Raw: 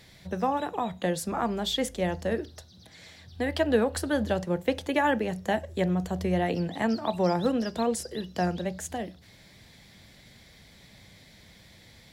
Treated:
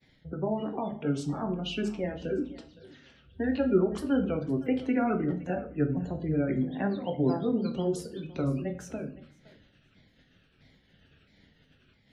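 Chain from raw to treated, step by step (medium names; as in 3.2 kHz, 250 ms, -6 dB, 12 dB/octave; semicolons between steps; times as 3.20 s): sawtooth pitch modulation -5.5 st, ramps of 663 ms; spectral gate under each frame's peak -25 dB strong; graphic EQ 250/2000/8000 Hz +8/-4/-6 dB; thinning echo 513 ms, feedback 16%, level -18 dB; expander -48 dBFS; peaking EQ 2.2 kHz +8 dB 0.6 oct; simulated room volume 45 m³, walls mixed, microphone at 0.37 m; trim -6 dB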